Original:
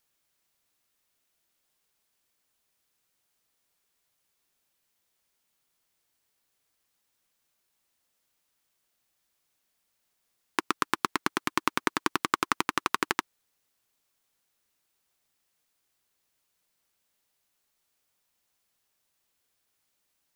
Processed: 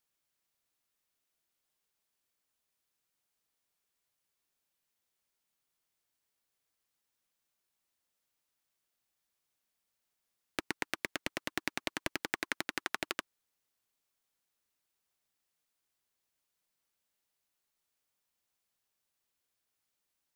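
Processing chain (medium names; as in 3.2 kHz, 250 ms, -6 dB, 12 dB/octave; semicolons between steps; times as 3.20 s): loudspeaker Doppler distortion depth 0.73 ms; trim -7.5 dB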